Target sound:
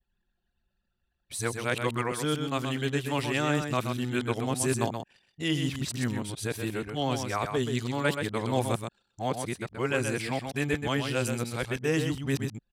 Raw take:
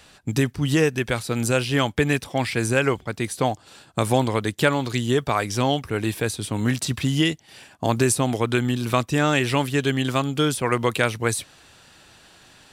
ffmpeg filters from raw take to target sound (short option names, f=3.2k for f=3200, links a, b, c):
-af "areverse,anlmdn=0.251,aecho=1:1:127:0.473,volume=-8dB"